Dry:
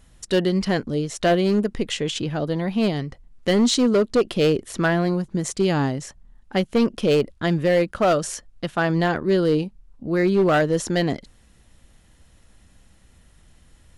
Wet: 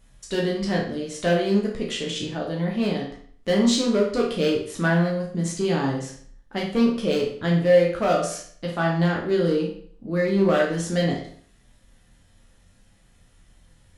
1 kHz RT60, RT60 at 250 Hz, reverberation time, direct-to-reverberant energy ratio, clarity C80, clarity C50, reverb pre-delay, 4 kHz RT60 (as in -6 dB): 0.55 s, 0.55 s, 0.55 s, -2.5 dB, 9.0 dB, 5.0 dB, 10 ms, 0.50 s